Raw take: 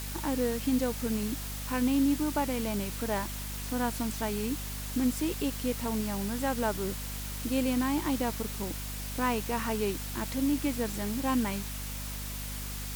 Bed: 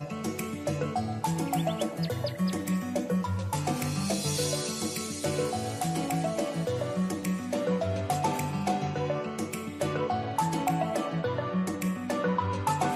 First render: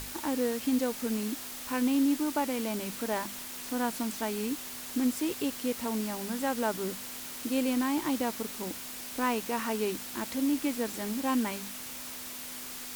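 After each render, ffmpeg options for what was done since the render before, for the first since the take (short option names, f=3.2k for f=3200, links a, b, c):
-af "bandreject=f=50:t=h:w=6,bandreject=f=100:t=h:w=6,bandreject=f=150:t=h:w=6,bandreject=f=200:t=h:w=6"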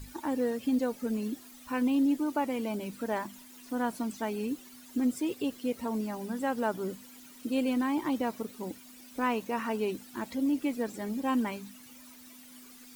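-af "afftdn=nr=15:nf=-41"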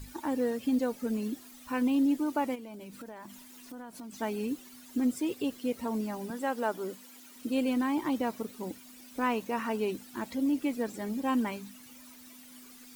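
-filter_complex "[0:a]asplit=3[a][b][c];[a]afade=t=out:st=2.54:d=0.02[d];[b]acompressor=threshold=-41dB:ratio=8:attack=3.2:release=140:knee=1:detection=peak,afade=t=in:st=2.54:d=0.02,afade=t=out:st=4.12:d=0.02[e];[c]afade=t=in:st=4.12:d=0.02[f];[d][e][f]amix=inputs=3:normalize=0,asettb=1/sr,asplit=3[g][h][i];[g]atrim=end=6.304[j];[h]atrim=start=6.3:end=7.36,asetpts=PTS-STARTPTS,afade=t=in:d=0.004:c=qsin,afade=t=out:st=1.056:d=0.004:c=qsin,highpass=270[k];[i]atrim=start=7.356[l];[j][k]acrossfade=d=0.004:c1=hsin:c2=qsin[m];[m][l]acrossfade=d=0.004:c1=qsin:c2=hsin"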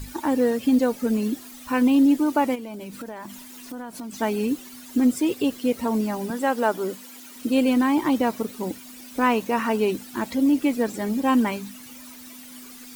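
-af "volume=9dB"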